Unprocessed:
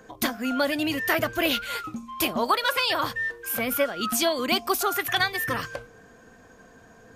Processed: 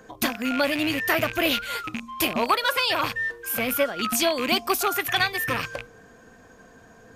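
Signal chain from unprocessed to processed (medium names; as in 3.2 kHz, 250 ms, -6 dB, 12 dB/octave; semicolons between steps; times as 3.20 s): rattle on loud lows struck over -40 dBFS, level -20 dBFS; trim +1 dB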